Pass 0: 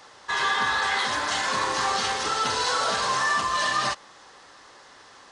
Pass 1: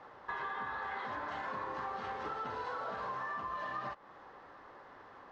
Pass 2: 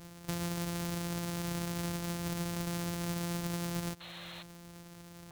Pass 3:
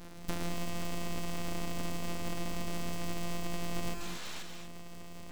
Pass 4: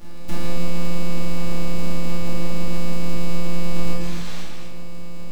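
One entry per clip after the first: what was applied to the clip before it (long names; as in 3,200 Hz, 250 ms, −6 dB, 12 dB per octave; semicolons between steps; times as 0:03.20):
low-pass filter 1,400 Hz 12 dB per octave; downward compressor 6 to 1, threshold −36 dBFS, peak gain reduction 12.5 dB; level −1.5 dB
samples sorted by size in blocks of 256 samples; sound drawn into the spectrogram noise, 0:04.00–0:04.43, 480–4,300 Hz −50 dBFS; bass and treble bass +6 dB, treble +8 dB
full-wave rectification; reverb whose tail is shaped and stops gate 270 ms rising, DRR 5 dB; speech leveller within 3 dB 0.5 s; level +2.5 dB
in parallel at −11.5 dB: sample-rate reduction 2,000 Hz; on the sum: rectangular room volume 430 cubic metres, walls mixed, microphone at 2.4 metres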